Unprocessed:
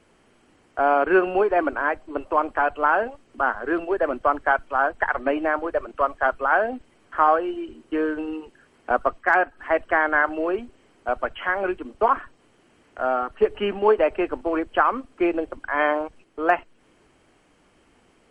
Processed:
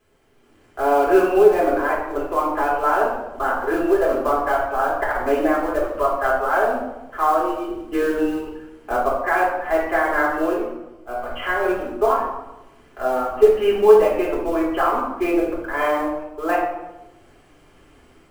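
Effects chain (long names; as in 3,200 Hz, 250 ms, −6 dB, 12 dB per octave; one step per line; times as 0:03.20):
dynamic equaliser 1,600 Hz, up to −5 dB, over −32 dBFS, Q 1.6
automatic gain control gain up to 10 dB
log-companded quantiser 6 bits
0:10.53–0:11.30: tuned comb filter 61 Hz, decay 0.37 s, harmonics all, mix 90%
convolution reverb RT60 1.0 s, pre-delay 3 ms, DRR −5.5 dB
level −11.5 dB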